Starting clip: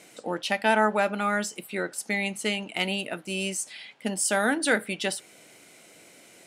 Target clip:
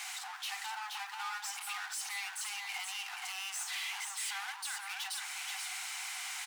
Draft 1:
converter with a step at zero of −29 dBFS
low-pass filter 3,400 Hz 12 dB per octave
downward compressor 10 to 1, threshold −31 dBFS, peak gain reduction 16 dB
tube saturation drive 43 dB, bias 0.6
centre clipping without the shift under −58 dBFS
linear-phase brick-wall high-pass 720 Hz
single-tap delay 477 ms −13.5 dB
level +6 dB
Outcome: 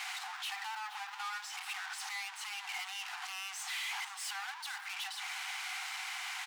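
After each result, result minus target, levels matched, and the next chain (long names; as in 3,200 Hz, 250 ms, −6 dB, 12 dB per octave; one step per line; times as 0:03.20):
echo-to-direct −9.5 dB; converter with a step at zero: distortion +8 dB; 8,000 Hz band −4.0 dB
converter with a step at zero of −29 dBFS
low-pass filter 3,400 Hz 12 dB per octave
downward compressor 10 to 1, threshold −31 dBFS, peak gain reduction 16 dB
tube saturation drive 43 dB, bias 0.6
centre clipping without the shift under −58 dBFS
linear-phase brick-wall high-pass 720 Hz
single-tap delay 477 ms −4 dB
level +6 dB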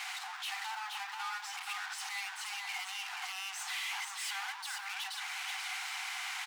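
converter with a step at zero: distortion +8 dB; 8,000 Hz band −4.0 dB
converter with a step at zero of −38.5 dBFS
low-pass filter 3,400 Hz 12 dB per octave
downward compressor 10 to 1, threshold −31 dBFS, peak gain reduction 15.5 dB
tube saturation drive 43 dB, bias 0.6
centre clipping without the shift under −58 dBFS
linear-phase brick-wall high-pass 720 Hz
single-tap delay 477 ms −4 dB
level +6 dB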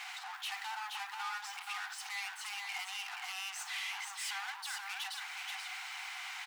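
8,000 Hz band −5.0 dB
converter with a step at zero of −38.5 dBFS
low-pass filter 8,700 Hz 12 dB per octave
downward compressor 10 to 1, threshold −31 dBFS, peak gain reduction 15.5 dB
tube saturation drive 43 dB, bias 0.6
centre clipping without the shift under −58 dBFS
linear-phase brick-wall high-pass 720 Hz
single-tap delay 477 ms −4 dB
level +6 dB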